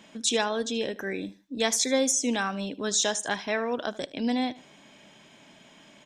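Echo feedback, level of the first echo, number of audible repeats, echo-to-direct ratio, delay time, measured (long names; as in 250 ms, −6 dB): 30%, −19.5 dB, 2, −19.0 dB, 76 ms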